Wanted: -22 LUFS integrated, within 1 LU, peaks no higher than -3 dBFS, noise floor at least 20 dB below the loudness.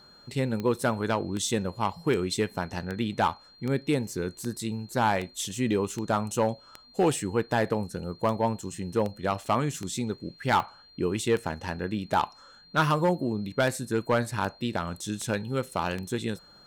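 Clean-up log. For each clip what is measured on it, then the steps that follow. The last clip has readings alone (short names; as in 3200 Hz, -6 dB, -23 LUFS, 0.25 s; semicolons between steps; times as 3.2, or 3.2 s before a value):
clicks 21; steady tone 4200 Hz; tone level -53 dBFS; loudness -29.0 LUFS; peak -14.0 dBFS; loudness target -22.0 LUFS
-> de-click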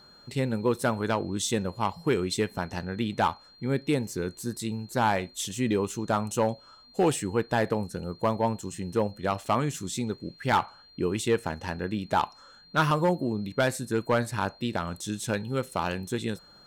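clicks 0; steady tone 4200 Hz; tone level -53 dBFS
-> notch 4200 Hz, Q 30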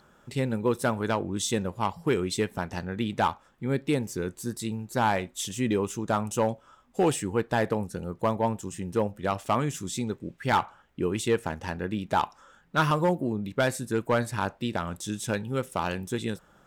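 steady tone none; loudness -29.0 LUFS; peak -15.5 dBFS; loudness target -22.0 LUFS
-> gain +7 dB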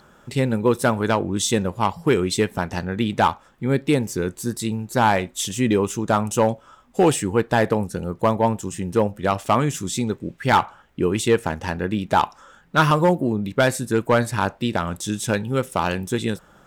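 loudness -22.0 LUFS; peak -8.5 dBFS; noise floor -53 dBFS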